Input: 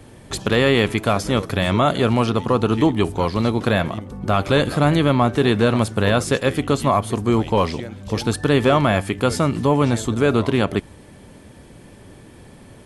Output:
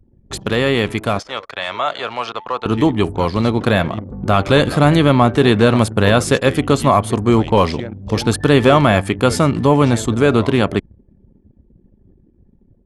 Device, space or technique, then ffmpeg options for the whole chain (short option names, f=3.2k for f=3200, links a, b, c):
voice memo with heavy noise removal: -filter_complex "[0:a]asettb=1/sr,asplit=3[a][b][c];[a]atrim=end=1.194[d];[b]atrim=start=1.19:end=2.66,asetpts=PTS-STARTPTS,afade=t=in:d=0.004:c=qsin,afade=t=out:st=1.466:d=0.004:c=qsin,acrossover=split=560 6900:gain=0.0708 1 0.0891[e][f][g];[e][f][g]amix=inputs=3:normalize=0[h];[c]atrim=start=2.656[i];[d][h]acrossfade=d=0.004:c1=hsin:c2=qsin[j];[j][i]acrossfade=d=0.004:c1=qsin:c2=hsin,anlmdn=6.31,dynaudnorm=f=890:g=7:m=11.5dB"